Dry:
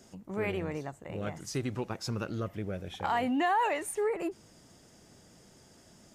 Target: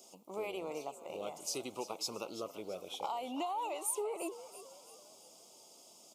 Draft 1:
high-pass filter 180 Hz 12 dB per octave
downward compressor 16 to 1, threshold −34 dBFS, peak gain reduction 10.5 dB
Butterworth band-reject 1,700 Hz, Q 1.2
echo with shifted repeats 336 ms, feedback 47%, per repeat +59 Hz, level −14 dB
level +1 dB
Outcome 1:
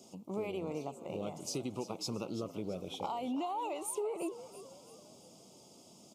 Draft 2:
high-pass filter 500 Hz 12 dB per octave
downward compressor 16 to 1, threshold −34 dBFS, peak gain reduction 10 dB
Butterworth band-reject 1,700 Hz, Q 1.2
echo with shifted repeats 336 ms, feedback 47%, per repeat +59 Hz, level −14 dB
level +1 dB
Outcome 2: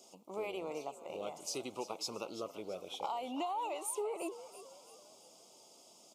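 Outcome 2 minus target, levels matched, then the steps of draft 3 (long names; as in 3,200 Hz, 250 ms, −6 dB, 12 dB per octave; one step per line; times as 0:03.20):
8,000 Hz band −2.5 dB
high-pass filter 500 Hz 12 dB per octave
downward compressor 16 to 1, threshold −34 dBFS, peak gain reduction 10 dB
Butterworth band-reject 1,700 Hz, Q 1.2
high-shelf EQ 10,000 Hz +8.5 dB
echo with shifted repeats 336 ms, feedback 47%, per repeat +59 Hz, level −14 dB
level +1 dB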